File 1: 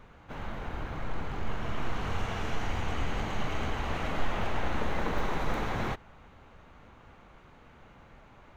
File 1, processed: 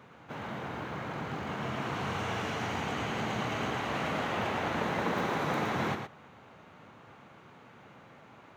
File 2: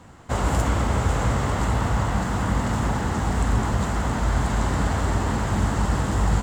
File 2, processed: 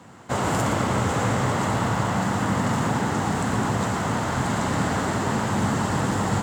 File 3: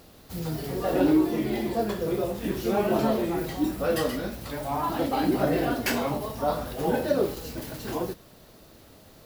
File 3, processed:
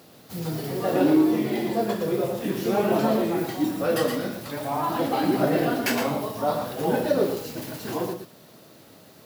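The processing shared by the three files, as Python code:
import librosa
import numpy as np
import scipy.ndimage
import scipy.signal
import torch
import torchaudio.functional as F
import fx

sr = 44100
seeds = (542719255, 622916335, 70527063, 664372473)

y = scipy.signal.sosfilt(scipy.signal.butter(4, 110.0, 'highpass', fs=sr, output='sos'), x)
y = y + 10.0 ** (-7.0 / 20.0) * np.pad(y, (int(115 * sr / 1000.0), 0))[:len(y)]
y = F.gain(torch.from_numpy(y), 1.5).numpy()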